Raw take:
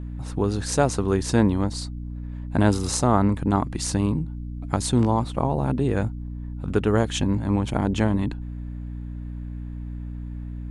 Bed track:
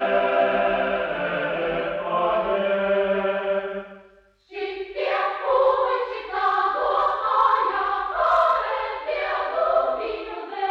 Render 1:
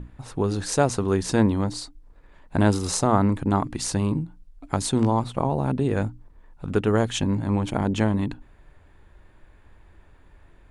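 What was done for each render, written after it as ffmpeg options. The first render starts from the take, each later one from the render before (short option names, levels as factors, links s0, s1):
-af "bandreject=f=60:t=h:w=6,bandreject=f=120:t=h:w=6,bandreject=f=180:t=h:w=6,bandreject=f=240:t=h:w=6,bandreject=f=300:t=h:w=6"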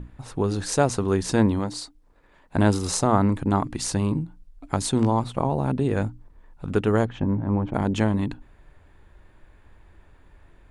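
-filter_complex "[0:a]asettb=1/sr,asplit=3[s0][s1][s2];[s0]atrim=end=1.594[s3];[s1]atrim=start=1.59:end=2.56,asetpts=PTS-STARTPTS,afade=t=in:d=0.004:c=qsin,afade=t=out:st=0.966:d=0.004:c=qsin,lowshelf=f=120:g=-10.5[s4];[s2]atrim=start=2.556[s5];[s3][s4]acrossfade=d=0.004:c1=hsin:c2=qsin[s6];[s6][s5]acrossfade=d=0.004:c1=qsin:c2=hsin,asplit=3[s7][s8][s9];[s7]afade=t=out:st=7.04:d=0.02[s10];[s8]lowpass=1300,afade=t=in:st=7.04:d=0.02,afade=t=out:st=7.73:d=0.02[s11];[s9]afade=t=in:st=7.73:d=0.02[s12];[s10][s11][s12]amix=inputs=3:normalize=0"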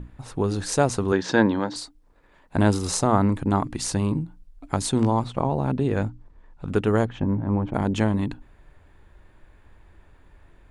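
-filter_complex "[0:a]asettb=1/sr,asplit=3[s0][s1][s2];[s0]atrim=end=1.124[s3];[s1]atrim=start=1.12:end=1.76,asetpts=PTS-STARTPTS,afade=t=in:d=0.004:c=qsin,afade=t=out:st=0.636:d=0.004:c=qsin,highpass=160,equalizer=f=310:t=q:w=4:g=3,equalizer=f=540:t=q:w=4:g=5,equalizer=f=890:t=q:w=4:g=5,equalizer=f=1600:t=q:w=4:g=10,equalizer=f=3500:t=q:w=4:g=5,lowpass=f=6000:w=0.5412,lowpass=f=6000:w=1.3066[s4];[s2]atrim=start=1.756[s5];[s3][s4]acrossfade=d=0.004:c1=hsin:c2=qsin[s6];[s6][s5]acrossfade=d=0.004:c1=qsin:c2=hsin,asettb=1/sr,asplit=3[s7][s8][s9];[s7]atrim=end=5.254[s10];[s8]atrim=start=5.25:end=6.67,asetpts=PTS-STARTPTS,afade=t=in:d=0.004:c=qsin,afade=t=out:st=1.416:d=0.004:c=qsin,lowpass=7300[s11];[s9]atrim=start=6.666[s12];[s10][s11]acrossfade=d=0.004:c1=hsin:c2=qsin[s13];[s13][s12]acrossfade=d=0.004:c1=qsin:c2=hsin"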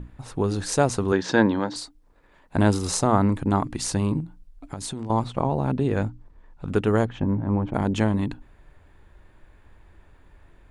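-filter_complex "[0:a]asettb=1/sr,asplit=3[s0][s1][s2];[s0]atrim=end=4.204[s3];[s1]atrim=start=4.2:end=5.1,asetpts=PTS-STARTPTS,afade=t=in:d=0.004:c=qsin,afade=t=out:st=0.896:d=0.004:c=qsin,acompressor=threshold=0.0398:ratio=10:attack=3.2:release=140:knee=1:detection=peak[s4];[s2]atrim=start=5.096[s5];[s3][s4]acrossfade=d=0.004:c1=hsin:c2=qsin[s6];[s6][s5]acrossfade=d=0.004:c1=qsin:c2=hsin"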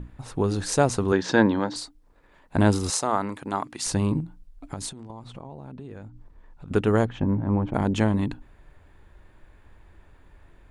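-filter_complex "[0:a]asettb=1/sr,asplit=3[s0][s1][s2];[s0]atrim=end=2.904[s3];[s1]atrim=start=2.9:end=3.86,asetpts=PTS-STARTPTS,afade=t=in:d=0.004:c=qsin,afade=t=out:st=0.956:d=0.004:c=qsin,highpass=f=730:p=1[s4];[s2]atrim=start=3.856[s5];[s3][s4]acrossfade=d=0.004:c1=hsin:c2=qsin[s6];[s6][s5]acrossfade=d=0.004:c1=qsin:c2=hsin,asettb=1/sr,asplit=3[s7][s8][s9];[s7]atrim=end=4.894[s10];[s8]atrim=start=4.89:end=6.71,asetpts=PTS-STARTPTS,afade=t=in:d=0.004:c=qsin,afade=t=out:st=1.816:d=0.004:c=qsin,acompressor=threshold=0.0126:ratio=5:attack=3.2:release=140:knee=1:detection=peak[s11];[s9]atrim=start=6.706[s12];[s10][s11]acrossfade=d=0.004:c1=hsin:c2=qsin[s13];[s13][s12]acrossfade=d=0.004:c1=qsin:c2=hsin"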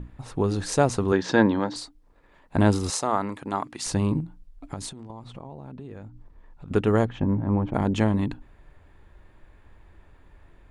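-af "highshelf=f=6200:g=-4.5,bandreject=f=1500:w=28"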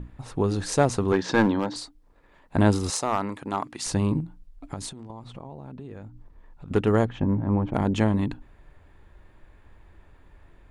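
-af "aeval=exprs='clip(val(0),-1,0.178)':c=same"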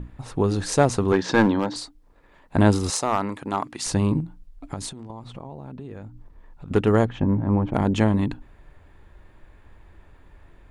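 -af "volume=1.33"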